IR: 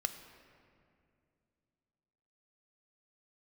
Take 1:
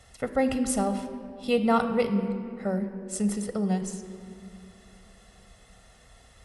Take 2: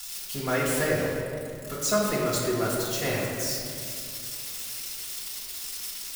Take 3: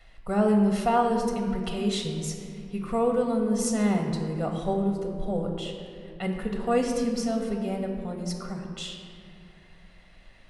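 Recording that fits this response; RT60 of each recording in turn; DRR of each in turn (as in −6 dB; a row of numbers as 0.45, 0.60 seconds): 1; 2.4, 2.4, 2.4 seconds; 7.5, −7.5, 1.5 decibels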